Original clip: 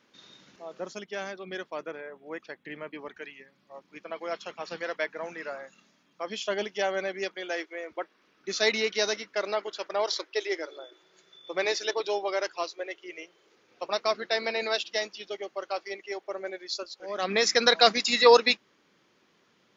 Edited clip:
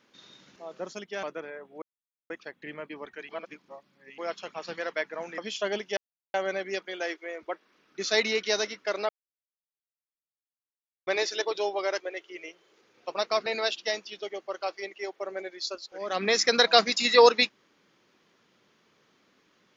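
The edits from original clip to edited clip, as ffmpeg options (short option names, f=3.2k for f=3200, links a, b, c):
-filter_complex "[0:a]asplit=11[a][b][c][d][e][f][g][h][i][j][k];[a]atrim=end=1.232[l];[b]atrim=start=1.738:end=2.33,asetpts=PTS-STARTPTS,afade=t=out:st=0.588:d=0.004:c=hsin,apad=pad_dur=0.48[m];[c]atrim=start=2.33:end=3.322,asetpts=PTS-STARTPTS,afade=t=in:d=0.004:c=hsin[n];[d]atrim=start=3.318:end=4.212,asetpts=PTS-STARTPTS,areverse[o];[e]atrim=start=4.208:end=5.412[p];[f]atrim=start=6.238:end=6.83,asetpts=PTS-STARTPTS,afade=t=out:st=0.588:d=0.004:c=hsin,apad=pad_dur=0.37[q];[g]atrim=start=6.83:end=9.58,asetpts=PTS-STARTPTS,afade=t=in:d=0.004:c=hsin,afade=t=out:st=2.746:d=0.004:c=hsin[r];[h]atrim=start=9.58:end=11.56,asetpts=PTS-STARTPTS,volume=0[s];[i]atrim=start=11.56:end=12.492,asetpts=PTS-STARTPTS,afade=t=in:d=0.004:c=hsin[t];[j]atrim=start=12.738:end=14.202[u];[k]atrim=start=14.538[v];[m][n]concat=n=2:v=0:a=1[w];[l][w]acrossfade=d=0.004:c1=hsin:c2=hsin[x];[x][o]acrossfade=d=0.004:c1=hsin:c2=hsin[y];[y][p]acrossfade=d=0.004:c1=hsin:c2=hsin[z];[q][r][s][t]concat=n=4:v=0:a=1[aa];[z][aa]acrossfade=d=0.004:c1=hsin:c2=hsin[ab];[ab][u]acrossfade=d=0.004:c1=hsin:c2=hsin[ac];[ac][v]acrossfade=d=0.004:c1=hsin:c2=hsin"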